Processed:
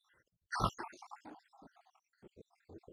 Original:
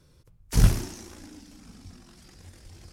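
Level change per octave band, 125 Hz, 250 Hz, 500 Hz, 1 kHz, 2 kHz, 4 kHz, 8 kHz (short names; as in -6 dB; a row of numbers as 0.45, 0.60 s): -20.5, -15.5, -8.0, +4.0, -4.5, -11.0, -19.0 dB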